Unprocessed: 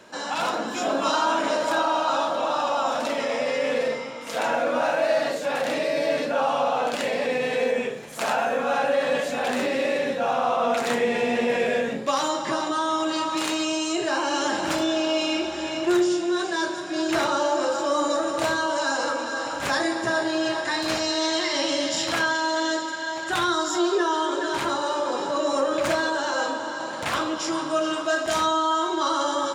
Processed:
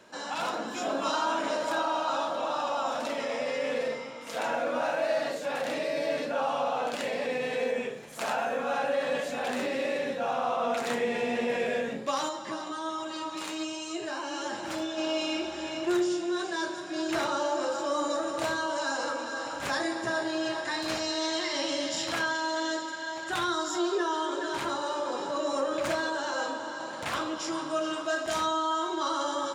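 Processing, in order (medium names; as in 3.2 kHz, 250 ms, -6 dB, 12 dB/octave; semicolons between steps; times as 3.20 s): 12.29–14.98 s: flange 1.3 Hz, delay 8.1 ms, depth 2.6 ms, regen +41%; trim -6 dB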